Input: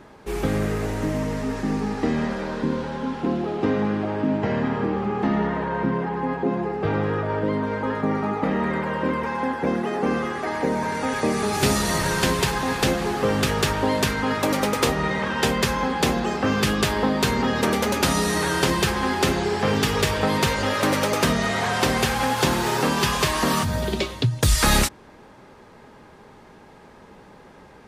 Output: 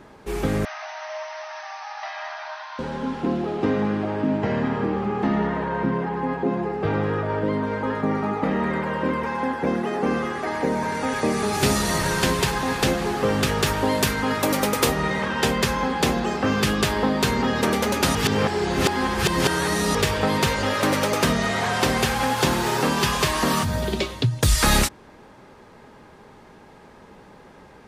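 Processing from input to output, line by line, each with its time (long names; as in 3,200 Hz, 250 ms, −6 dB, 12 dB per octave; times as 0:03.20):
0:00.65–0:02.79: linear-phase brick-wall band-pass 600–6,300 Hz
0:13.66–0:15.26: high-shelf EQ 10,000 Hz +10 dB
0:18.15–0:19.95: reverse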